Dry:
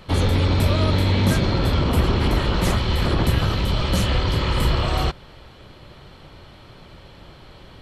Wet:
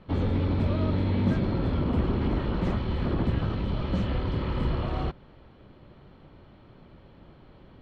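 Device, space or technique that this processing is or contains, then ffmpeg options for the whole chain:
phone in a pocket: -af "lowpass=3700,equalizer=frequency=240:width_type=o:width=1.2:gain=6,highshelf=frequency=2000:gain=-8.5,volume=-8.5dB"

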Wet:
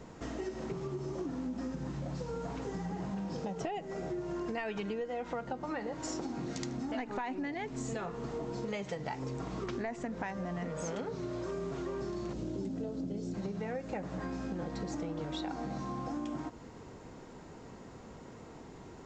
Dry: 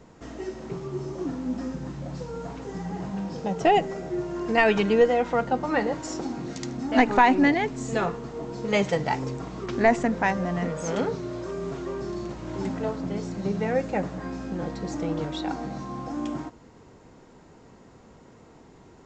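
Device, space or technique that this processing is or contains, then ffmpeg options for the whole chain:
serial compression, peaks first: -filter_complex "[0:a]asettb=1/sr,asplit=3[link_01][link_02][link_03];[link_01]atrim=end=12.334[link_04];[link_02]atrim=start=12.33:end=13.34,asetpts=PTS-STARTPTS,afade=type=in:duration=0.004:curve=qsin,afade=type=out:start_time=1.006:duration=0.004:curve=qsin,equalizer=frequency=250:width_type=o:width=1:gain=5,equalizer=frequency=500:width_type=o:width=1:gain=3,equalizer=frequency=1000:width_type=o:width=1:gain=-11,equalizer=frequency=2000:width_type=o:width=1:gain=-8[link_05];[link_03]atrim=start=13.336[link_06];[link_04][link_05]acrossfade=duration=0.004:curve1=hsin:curve2=qsin[link_07];[link_07][link_06]acrossfade=duration=0.004:curve1=qsin:curve2=hsin,acompressor=threshold=-31dB:ratio=5,acompressor=threshold=-38dB:ratio=2.5,volume=1.5dB"

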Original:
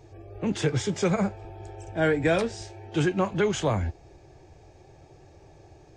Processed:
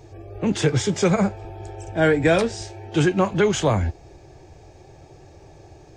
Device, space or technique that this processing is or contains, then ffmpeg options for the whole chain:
exciter from parts: -filter_complex "[0:a]asplit=2[link_01][link_02];[link_02]highpass=3100,asoftclip=type=tanh:threshold=-28.5dB,volume=-13.5dB[link_03];[link_01][link_03]amix=inputs=2:normalize=0,volume=5.5dB"

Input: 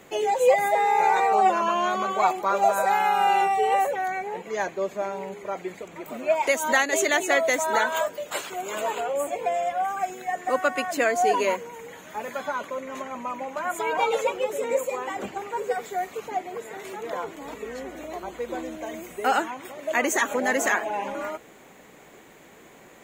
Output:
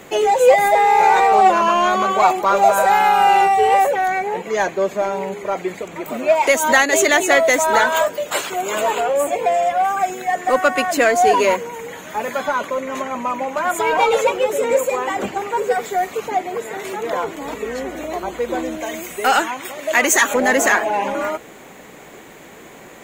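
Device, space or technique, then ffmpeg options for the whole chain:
parallel distortion: -filter_complex "[0:a]asplit=2[link_01][link_02];[link_02]asoftclip=type=hard:threshold=-26dB,volume=-6dB[link_03];[link_01][link_03]amix=inputs=2:normalize=0,asettb=1/sr,asplit=3[link_04][link_05][link_06];[link_04]atrim=end=18.804[link_07];[link_05]atrim=start=18.8:end=20.34,asetpts=PTS-STARTPTS,afade=type=in:duration=0.004:curve=qsin,afade=type=out:start_time=1.536:duration=0.004:curve=qsin,tiltshelf=frequency=1200:gain=-4[link_08];[link_06]atrim=start=20.336[link_09];[link_07][link_08]acrossfade=duration=0.004:curve1=hsin:curve2=qsin[link_10];[link_10][link_09]acrossfade=duration=0.004:curve1=qsin:curve2=hsin,volume=6dB"

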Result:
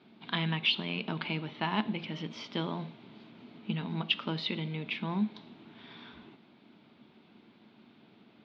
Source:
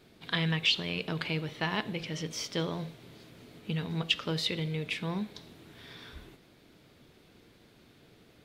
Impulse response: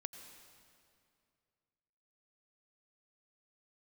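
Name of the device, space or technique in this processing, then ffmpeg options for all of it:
kitchen radio: -af "highpass=180,equalizer=frequency=220:width_type=q:width=4:gain=10,equalizer=frequency=490:width_type=q:width=4:gain=-8,equalizer=frequency=910:width_type=q:width=4:gain=5,equalizer=frequency=1800:width_type=q:width=4:gain=-5,lowpass=frequency=3700:width=0.5412,lowpass=frequency=3700:width=1.3066"

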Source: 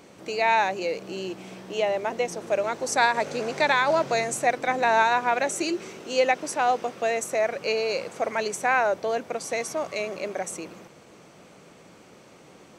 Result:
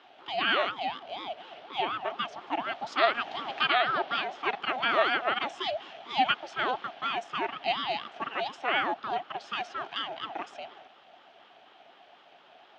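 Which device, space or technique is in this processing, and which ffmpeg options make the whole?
voice changer toy: -filter_complex "[0:a]asettb=1/sr,asplit=3[link_01][link_02][link_03];[link_01]atrim=end=3.634[link_04];[link_02]atrim=start=3.63:end=4.43,asetpts=PTS-STARTPTS,afade=type=in:duration=0.004:curve=qsin,afade=type=out:start_time=0.796:duration=0.004:curve=qsin,lowpass=frequency=5500:width=0.5412,lowpass=frequency=5500:width=1.3066[link_05];[link_03]atrim=start=4.426[link_06];[link_04][link_05]acrossfade=duration=0.004:curve1=hsin:curve2=qsin[link_07];[link_07][link_06]acrossfade=duration=0.004:curve1=qsin:curve2=hsin,aeval=exprs='val(0)*sin(2*PI*480*n/s+480*0.5/4.1*sin(2*PI*4.1*n/s))':channel_layout=same,highpass=470,equalizer=frequency=490:width_type=q:width=4:gain=-8,equalizer=frequency=700:width_type=q:width=4:gain=9,equalizer=frequency=1000:width_type=q:width=4:gain=-9,equalizer=frequency=2000:width_type=q:width=4:gain=-3,equalizer=frequency=3200:width_type=q:width=4:gain=7,lowpass=frequency=3800:width=0.5412,lowpass=frequency=3800:width=1.3066"

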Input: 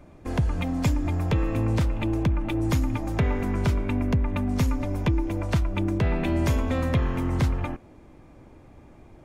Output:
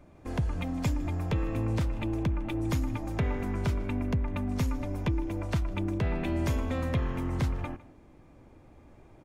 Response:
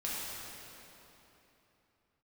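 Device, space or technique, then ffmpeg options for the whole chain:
ducked delay: -filter_complex "[0:a]asplit=3[link_01][link_02][link_03];[link_02]adelay=155,volume=-2.5dB[link_04];[link_03]apad=whole_len=414500[link_05];[link_04][link_05]sidechaincompress=threshold=-40dB:ratio=6:attack=16:release=1200[link_06];[link_01][link_06]amix=inputs=2:normalize=0,volume=-5.5dB"

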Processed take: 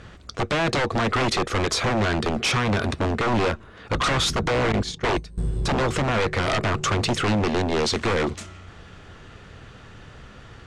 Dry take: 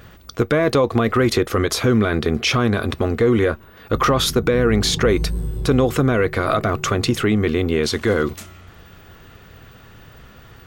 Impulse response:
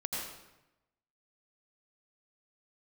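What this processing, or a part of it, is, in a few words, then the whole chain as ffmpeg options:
synthesiser wavefolder: -filter_complex "[0:a]asettb=1/sr,asplit=3[link_01][link_02][link_03];[link_01]atrim=end=4.724[link_04];[link_02]atrim=start=4.72:end=5.38,asetpts=PTS-STARTPTS,afade=type=in:duration=0.004:curve=qsin,afade=type=out:start_time=0.656:duration=0.004:curve=qsin,agate=range=-20dB:threshold=-16dB:ratio=16:detection=peak[link_05];[link_03]atrim=start=5.376[link_06];[link_04][link_05]acrossfade=duration=0.004:curve1=hsin:curve2=qsin[link_07];[link_07][link_06]acrossfade=duration=0.004:curve1=qsin:curve2=hsin,aeval=exprs='0.15*(abs(mod(val(0)/0.15+3,4)-2)-1)':channel_layout=same,lowpass=frequency=8700:width=0.5412,lowpass=frequency=8700:width=1.3066"

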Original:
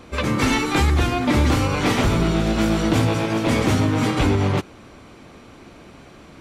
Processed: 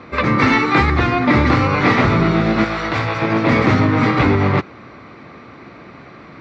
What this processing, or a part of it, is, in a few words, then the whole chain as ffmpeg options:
guitar cabinet: -filter_complex "[0:a]highpass=94,equalizer=frequency=130:width_type=q:width=4:gain=3,equalizer=frequency=1200:width_type=q:width=4:gain=6,equalizer=frequency=2000:width_type=q:width=4:gain=7,equalizer=frequency=3100:width_type=q:width=4:gain=-8,lowpass=frequency=4400:width=0.5412,lowpass=frequency=4400:width=1.3066,asettb=1/sr,asplit=3[link_01][link_02][link_03];[link_01]atrim=end=2.644[link_04];[link_02]atrim=start=2.64:end=3.22,asetpts=PTS-STARTPTS,afade=type=in:duration=0.004:curve=qsin,afade=type=out:start_time=0.576:duration=0.004:curve=qsin,equalizer=frequency=220:width=0.63:gain=-13.5[link_05];[link_03]atrim=start=3.216[link_06];[link_04][link_05]acrossfade=duration=0.004:curve1=hsin:curve2=qsin[link_07];[link_07][link_06]acrossfade=duration=0.004:curve1=qsin:curve2=hsin,volume=4.5dB"

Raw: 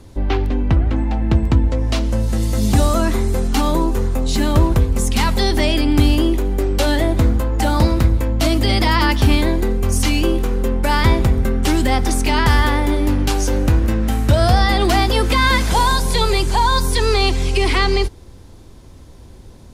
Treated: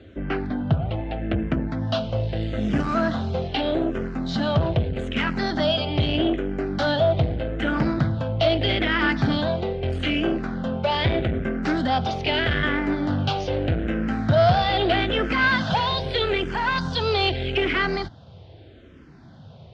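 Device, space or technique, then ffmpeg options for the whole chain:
barber-pole phaser into a guitar amplifier: -filter_complex "[0:a]asplit=2[link_01][link_02];[link_02]afreqshift=-0.8[link_03];[link_01][link_03]amix=inputs=2:normalize=1,asoftclip=type=tanh:threshold=-15dB,highpass=100,equalizer=frequency=100:width_type=q:width=4:gain=4,equalizer=frequency=150:width_type=q:width=4:gain=7,equalizer=frequency=660:width_type=q:width=4:gain=7,equalizer=frequency=990:width_type=q:width=4:gain=-6,equalizer=frequency=1500:width_type=q:width=4:gain=6,equalizer=frequency=3100:width_type=q:width=4:gain=5,lowpass=frequency=4100:width=0.5412,lowpass=frequency=4100:width=1.3066"

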